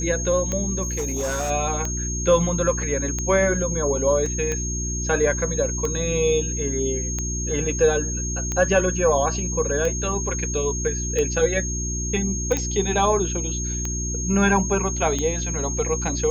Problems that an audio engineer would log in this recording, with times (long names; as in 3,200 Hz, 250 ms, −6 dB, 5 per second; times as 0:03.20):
mains hum 60 Hz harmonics 6 −28 dBFS
scratch tick 45 rpm −13 dBFS
whistle 6,500 Hz −28 dBFS
0:00.82–0:01.51: clipping −21.5 dBFS
0:04.26: drop-out 2.4 ms
0:12.57: click −10 dBFS